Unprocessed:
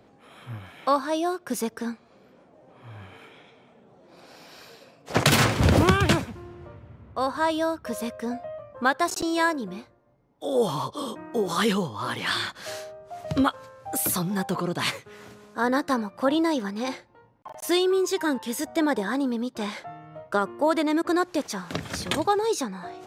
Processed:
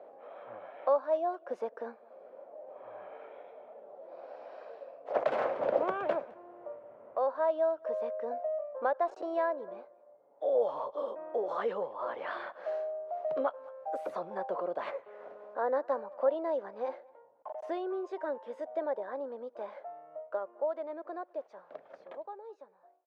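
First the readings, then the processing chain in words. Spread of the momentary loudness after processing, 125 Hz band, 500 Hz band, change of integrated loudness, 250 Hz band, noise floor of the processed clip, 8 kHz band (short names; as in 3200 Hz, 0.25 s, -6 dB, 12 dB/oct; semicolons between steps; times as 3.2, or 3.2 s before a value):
19 LU, under -30 dB, -3.5 dB, -9.0 dB, -19.5 dB, -62 dBFS, under -40 dB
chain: ending faded out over 7.39 s; ladder band-pass 640 Hz, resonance 65%; speakerphone echo 0.21 s, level -26 dB; three-band squash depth 40%; gain +4.5 dB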